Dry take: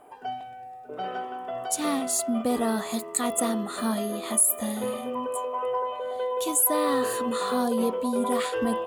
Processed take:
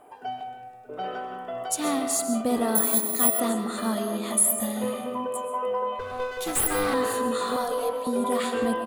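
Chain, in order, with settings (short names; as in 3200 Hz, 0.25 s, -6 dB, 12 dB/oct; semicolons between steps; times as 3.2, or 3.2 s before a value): 5.99–6.94 minimum comb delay 2.5 ms; 7.56–8.07 steep high-pass 450 Hz 96 dB/oct; outdoor echo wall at 180 m, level -20 dB; digital reverb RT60 1.1 s, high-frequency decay 0.4×, pre-delay 90 ms, DRR 7 dB; 2.75–3.4 careless resampling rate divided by 4×, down filtered, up zero stuff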